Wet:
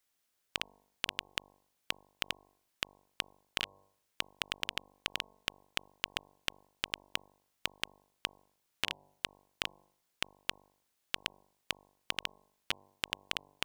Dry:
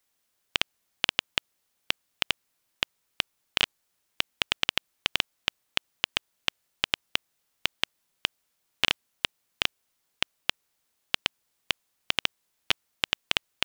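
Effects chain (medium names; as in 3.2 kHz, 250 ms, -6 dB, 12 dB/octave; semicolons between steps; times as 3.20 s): de-hum 48.93 Hz, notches 22; compression 5:1, threshold -26 dBFS, peak gain reduction 10 dB; trim -4 dB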